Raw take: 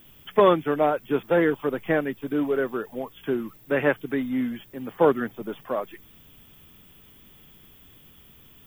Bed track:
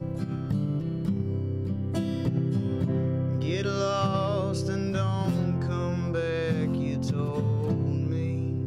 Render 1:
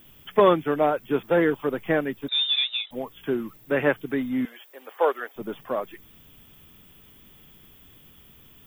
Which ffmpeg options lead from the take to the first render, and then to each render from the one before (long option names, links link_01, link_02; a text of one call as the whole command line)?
ffmpeg -i in.wav -filter_complex "[0:a]asettb=1/sr,asplit=3[link_01][link_02][link_03];[link_01]atrim=end=2.284[link_04];[link_02]atrim=start=2.28:end=2.91,asetpts=PTS-STARTPTS,afade=type=in:duration=0.004:curve=qsin,afade=type=out:start_time=0.626:duration=0.004:curve=qsin,lowpass=frequency=3300:width_type=q:width=0.5098,lowpass=frequency=3300:width_type=q:width=0.6013,lowpass=frequency=3300:width_type=q:width=0.9,lowpass=frequency=3300:width_type=q:width=2.563,afreqshift=-3900[link_05];[link_03]atrim=start=2.906[link_06];[link_04][link_05]acrossfade=duration=0.004:curve1=hsin:curve2=qsin[link_07];[link_07][link_06]acrossfade=duration=0.004:curve1=qsin:curve2=hsin,asettb=1/sr,asplit=3[link_08][link_09][link_10];[link_08]atrim=end=4.454[link_11];[link_09]atrim=start=4.45:end=5.36,asetpts=PTS-STARTPTS,afade=type=in:duration=0.004:curve=qsin,afade=type=out:start_time=0.906:duration=0.004:curve=qsin,highpass=frequency=480:width=0.5412,highpass=frequency=480:width=1.3066[link_12];[link_10]atrim=start=5.356[link_13];[link_11][link_12]acrossfade=duration=0.004:curve1=hsin:curve2=qsin[link_14];[link_14][link_13]acrossfade=duration=0.004:curve1=qsin:curve2=hsin" out.wav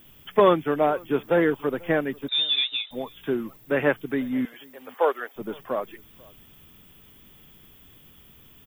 ffmpeg -i in.wav -filter_complex "[0:a]asplit=2[link_01][link_02];[link_02]adelay=489.8,volume=-25dB,highshelf=frequency=4000:gain=-11[link_03];[link_01][link_03]amix=inputs=2:normalize=0" out.wav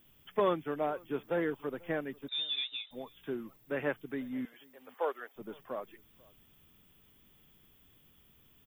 ffmpeg -i in.wav -af "volume=-11.5dB" out.wav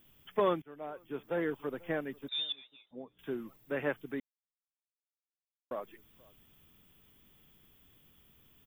ffmpeg -i in.wav -filter_complex "[0:a]asettb=1/sr,asplit=3[link_01][link_02][link_03];[link_01]atrim=end=2.524[link_04];[link_02]atrim=start=2.52:end=3.19,asetpts=PTS-STARTPTS,afade=type=in:duration=0.004:curve=qsin,afade=type=out:start_time=0.666:duration=0.004:curve=qsin,bandpass=frequency=250:width_type=q:width=0.67[link_05];[link_03]atrim=start=3.186[link_06];[link_04][link_05]acrossfade=duration=0.004:curve1=hsin:curve2=qsin[link_07];[link_07][link_06]acrossfade=duration=0.004:curve1=qsin:curve2=hsin,asplit=4[link_08][link_09][link_10][link_11];[link_08]atrim=end=0.62,asetpts=PTS-STARTPTS,afade=type=out:start_time=0.616:duration=0.004:curve=hsin:silence=0.1[link_12];[link_09]atrim=start=0.62:end=4.2,asetpts=PTS-STARTPTS,afade=type=in:duration=0.91:silence=0.1,afade=type=out:start_time=3.576:duration=0.004:curve=hsin[link_13];[link_10]atrim=start=4.2:end=5.71,asetpts=PTS-STARTPTS,volume=0[link_14];[link_11]atrim=start=5.71,asetpts=PTS-STARTPTS,afade=type=in:duration=0.004:curve=hsin[link_15];[link_12][link_13][link_14][link_15]concat=n=4:v=0:a=1" out.wav